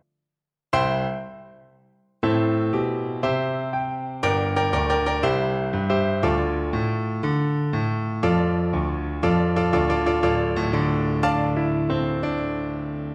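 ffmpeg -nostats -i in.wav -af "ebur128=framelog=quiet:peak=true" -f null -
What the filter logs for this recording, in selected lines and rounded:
Integrated loudness:
  I:         -23.1 LUFS
  Threshold: -33.4 LUFS
Loudness range:
  LRA:         3.4 LU
  Threshold: -43.2 LUFS
  LRA low:   -25.3 LUFS
  LRA high:  -21.9 LUFS
True peak:
  Peak:       -7.5 dBFS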